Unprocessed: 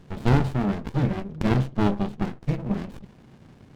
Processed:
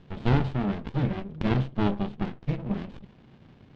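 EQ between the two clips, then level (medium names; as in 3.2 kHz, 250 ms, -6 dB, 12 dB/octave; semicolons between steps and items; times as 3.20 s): distance through air 140 m; peaking EQ 3.3 kHz +5.5 dB 1 oct; -3.0 dB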